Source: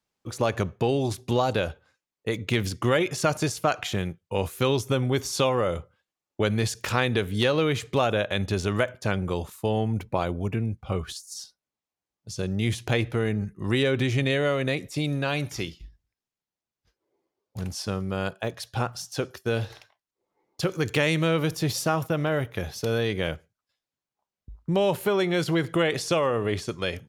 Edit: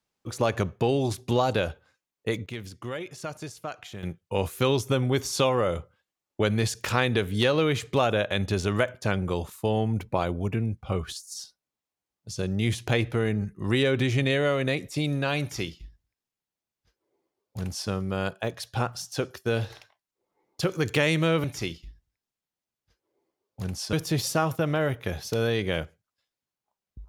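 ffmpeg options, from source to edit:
-filter_complex "[0:a]asplit=5[a][b][c][d][e];[a]atrim=end=2.46,asetpts=PTS-STARTPTS,afade=t=out:st=2.3:d=0.16:c=log:silence=0.251189[f];[b]atrim=start=2.46:end=4.03,asetpts=PTS-STARTPTS,volume=-12dB[g];[c]atrim=start=4.03:end=21.442,asetpts=PTS-STARTPTS,afade=t=in:d=0.16:c=log:silence=0.251189[h];[d]atrim=start=15.408:end=17.902[i];[e]atrim=start=21.438[j];[f][g][h]concat=n=3:v=0:a=1[k];[k][i]acrossfade=d=0.004:c1=hsin:c2=hsin[l];[l][j]acrossfade=d=0.004:c1=hsin:c2=hsin"

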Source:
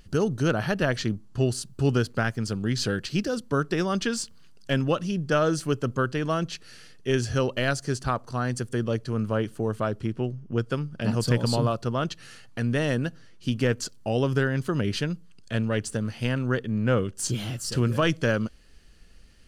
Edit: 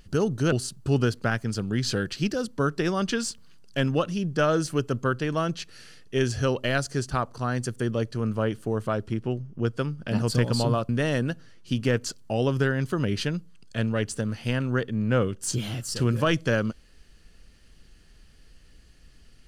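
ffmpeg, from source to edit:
-filter_complex "[0:a]asplit=3[a][b][c];[a]atrim=end=0.522[d];[b]atrim=start=1.448:end=11.822[e];[c]atrim=start=12.648[f];[d][e]acrossfade=d=0.004:c1=hsin:c2=hsin[g];[g][f]acrossfade=d=0.004:c1=hsin:c2=hsin"

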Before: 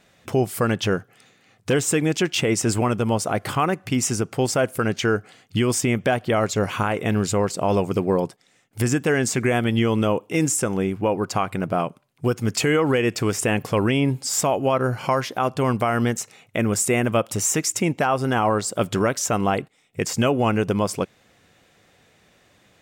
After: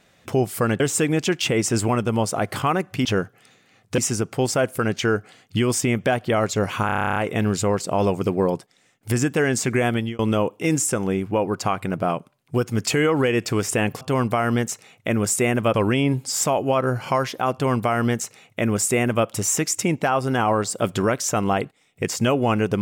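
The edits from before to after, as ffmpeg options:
-filter_complex "[0:a]asplit=17[a][b][c][d][e][f][g][h][i][j][k][l][m][n][o][p][q];[a]atrim=end=0.802[r];[b]atrim=start=1.728:end=3.982[s];[c]atrim=start=0.798:end=1.732[t];[d]atrim=start=3.978:end=6.892[u];[e]atrim=start=6.858:end=6.892[v];[f]atrim=start=6.858:end=6.892[w];[g]atrim=start=6.858:end=6.892[x];[h]atrim=start=6.858:end=6.892[y];[i]atrim=start=6.858:end=6.892[z];[j]atrim=start=6.858:end=6.892[aa];[k]atrim=start=6.858:end=6.892[ab];[l]atrim=start=6.858:end=6.892[ac];[m]atrim=start=6.858:end=6.892[ad];[n]atrim=start=6.858:end=9.89,asetpts=PTS-STARTPTS,afade=t=out:st=2.782:d=0.25[ae];[o]atrim=start=9.89:end=13.712,asetpts=PTS-STARTPTS,afade=t=in:d=0.004:c=hsin[af];[p]atrim=start=15.498:end=17.232[ag];[q]atrim=start=13.708[ah];[r][s]acrossfade=d=0.004:c1=hsin:c2=hsin[ai];[ai][t]acrossfade=d=0.004:c1=hsin:c2=hsin[aj];[aj][u]acrossfade=d=0.004:c1=hsin:c2=hsin[ak];[ak][v]acrossfade=d=0.004:c1=hsin:c2=hsin[al];[al][w]acrossfade=d=0.004:c1=hsin:c2=hsin[am];[am][x]acrossfade=d=0.004:c1=hsin:c2=hsin[an];[an][y]acrossfade=d=0.004:c1=hsin:c2=hsin[ao];[ao][z]acrossfade=d=0.004:c1=hsin:c2=hsin[ap];[ap][aa]acrossfade=d=0.004:c1=hsin:c2=hsin[aq];[aq][ab]acrossfade=d=0.004:c1=hsin:c2=hsin[ar];[ar][ac]acrossfade=d=0.004:c1=hsin:c2=hsin[as];[as][ad]acrossfade=d=0.004:c1=hsin:c2=hsin[at];[ae][af]concat=n=2:v=0:a=1[au];[at][au]acrossfade=d=0.004:c1=hsin:c2=hsin[av];[av][ag]acrossfade=d=0.004:c1=hsin:c2=hsin[aw];[aw][ah]acrossfade=d=0.004:c1=hsin:c2=hsin"

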